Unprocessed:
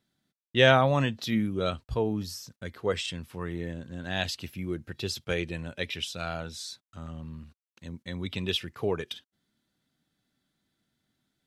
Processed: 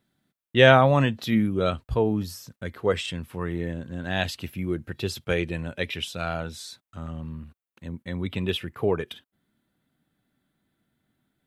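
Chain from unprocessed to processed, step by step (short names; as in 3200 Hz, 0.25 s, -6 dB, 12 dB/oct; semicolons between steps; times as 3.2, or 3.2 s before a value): bell 5400 Hz -7.5 dB 1.3 oct, from 7.33 s -13.5 dB; gain +5 dB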